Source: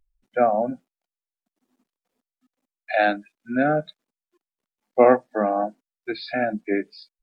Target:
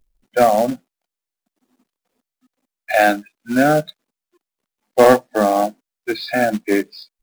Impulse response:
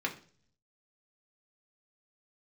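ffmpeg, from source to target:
-af "acontrast=73,acrusher=bits=4:mode=log:mix=0:aa=0.000001"

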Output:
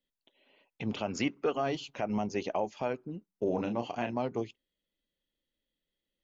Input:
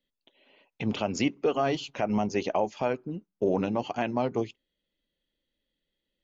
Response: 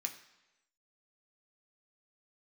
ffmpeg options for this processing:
-filter_complex "[0:a]asettb=1/sr,asplit=3[a][b][c];[a]atrim=end=1.064[d];[b]atrim=start=1.06:end=1.5,asetpts=PTS-STARTPTS,afade=t=in:d=0.004:c=qsin,afade=t=out:st=0.436:d=0.004:c=qsin,equalizer=f=1.4k:t=o:w=0.96:g=8.5[e];[c]atrim=start=1.496[f];[d][e]acrossfade=d=0.004:c1=hsin:c2=qsin[g];[g][f]acrossfade=d=0.004:c1=qsin:c2=hsin,asettb=1/sr,asplit=3[h][i][j];[h]atrim=end=3.444[k];[i]atrim=start=3.44:end=4.14,asetpts=PTS-STARTPTS,afade=t=in:d=0.004:c=qsin,afade=t=out:st=0.696:d=0.004:c=qsin,asplit=2[l][m];[m]adelay=34,volume=-7dB[n];[l][n]amix=inputs=2:normalize=0,atrim=end_sample=30870[o];[j]atrim=start=4.136[p];[k][o]acrossfade=d=0.004:c1=hsin:c2=qsin[q];[q][p]acrossfade=d=0.004:c1=qsin:c2=hsin,volume=-5dB"

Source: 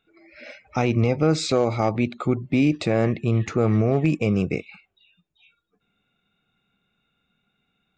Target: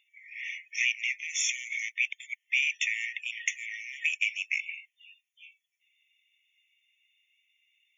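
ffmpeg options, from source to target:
-af "aphaser=in_gain=1:out_gain=1:delay=3.2:decay=0.22:speed=0.37:type=triangular,afftfilt=real='re*eq(mod(floor(b*sr/1024/1800),2),1)':imag='im*eq(mod(floor(b*sr/1024/1800),2),1)':win_size=1024:overlap=0.75,volume=7dB"

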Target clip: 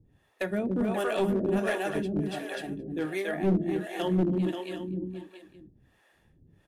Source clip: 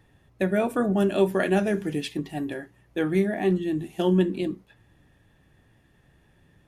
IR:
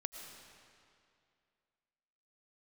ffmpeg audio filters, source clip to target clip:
-filter_complex "[0:a]aecho=1:1:280|532|758.8|962.9|1147:0.631|0.398|0.251|0.158|0.1,acrossover=split=430[a][b];[a]aeval=exprs='val(0)*(1-1/2+1/2*cos(2*PI*1.4*n/s))':c=same[c];[b]aeval=exprs='val(0)*(1-1/2-1/2*cos(2*PI*1.4*n/s))':c=same[d];[c][d]amix=inputs=2:normalize=0,aeval=exprs='clip(val(0),-1,0.075)':c=same"

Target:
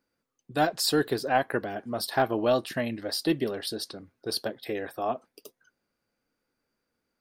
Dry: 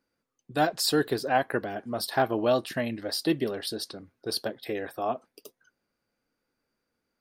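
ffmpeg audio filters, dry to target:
-af "aeval=exprs='0.316*(cos(1*acos(clip(val(0)/0.316,-1,1)))-cos(1*PI/2))+0.0112*(cos(2*acos(clip(val(0)/0.316,-1,1)))-cos(2*PI/2))':c=same"

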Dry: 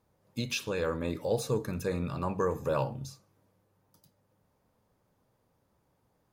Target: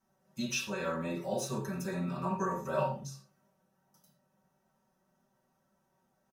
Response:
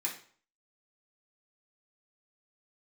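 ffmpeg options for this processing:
-filter_complex "[0:a]aecho=1:1:5.3:0.93[a];[1:a]atrim=start_sample=2205,afade=t=out:st=0.14:d=0.01,atrim=end_sample=6615,asetrate=33516,aresample=44100[b];[a][b]afir=irnorm=-1:irlink=0,volume=-8dB"

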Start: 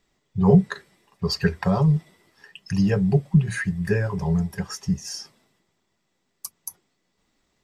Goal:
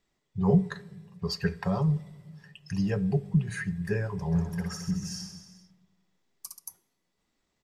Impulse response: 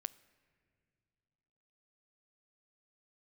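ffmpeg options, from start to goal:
-filter_complex "[0:a]asplit=3[a][b][c];[a]afade=t=out:st=4.31:d=0.02[d];[b]aecho=1:1:60|132|218.4|322.1|446.5:0.631|0.398|0.251|0.158|0.1,afade=t=in:st=4.31:d=0.02,afade=t=out:st=6.58:d=0.02[e];[c]afade=t=in:st=6.58:d=0.02[f];[d][e][f]amix=inputs=3:normalize=0[g];[1:a]atrim=start_sample=2205,asetrate=70560,aresample=44100[h];[g][h]afir=irnorm=-1:irlink=0"

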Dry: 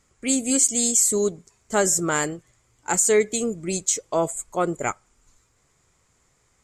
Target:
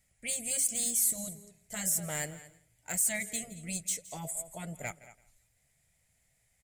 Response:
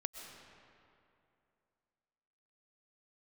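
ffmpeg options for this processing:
-filter_complex "[0:a]lowshelf=f=350:g=-3.5,asplit=2[a][b];[b]aecho=0:1:225:0.106[c];[a][c]amix=inputs=2:normalize=0,afftfilt=real='re*lt(hypot(re,im),0.355)':imag='im*lt(hypot(re,im),0.355)':win_size=1024:overlap=0.75,asoftclip=type=tanh:threshold=-13.5dB,firequalizer=gain_entry='entry(160,0);entry(360,-17);entry(650,-1);entry(1100,-20);entry(1900,0);entry(2900,-3);entry(6800,-7);entry(10000,9)':delay=0.05:min_phase=1,asplit=2[d][e];[e]aecho=0:1:167|334:0.106|0.0244[f];[d][f]amix=inputs=2:normalize=0,volume=-4.5dB"

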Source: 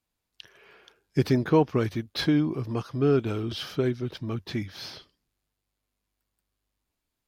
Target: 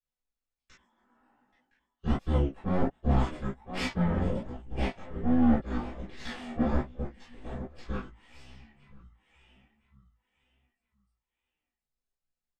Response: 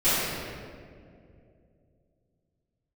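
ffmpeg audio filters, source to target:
-filter_complex "[0:a]asetrate=25446,aresample=44100,aecho=1:1:1014|2028|3042:0.316|0.0854|0.0231,flanger=delay=3.9:depth=3.3:regen=74:speed=0.29:shape=sinusoidal,acrossover=split=330|860[a][b][c];[b]asoftclip=type=hard:threshold=-34dB[d];[a][d][c]amix=inputs=3:normalize=0,aeval=exprs='0.2*(cos(1*acos(clip(val(0)/0.2,-1,1)))-cos(1*PI/2))+0.00631*(cos(3*acos(clip(val(0)/0.2,-1,1)))-cos(3*PI/2))+0.0282*(cos(7*acos(clip(val(0)/0.2,-1,1)))-cos(7*PI/2))+0.00251*(cos(8*acos(clip(val(0)/0.2,-1,1)))-cos(8*PI/2))':c=same,areverse,acompressor=threshold=-34dB:ratio=10,areverse[e];[1:a]atrim=start_sample=2205,atrim=end_sample=3969,asetrate=66150,aresample=44100[f];[e][f]afir=irnorm=-1:irlink=0,flanger=delay=15.5:depth=4.8:speed=1.3,volume=5dB"

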